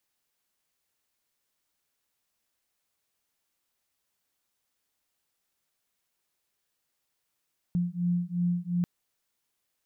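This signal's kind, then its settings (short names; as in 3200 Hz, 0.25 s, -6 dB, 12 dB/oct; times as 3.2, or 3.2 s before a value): beating tones 174 Hz, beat 2.8 Hz, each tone -28.5 dBFS 1.09 s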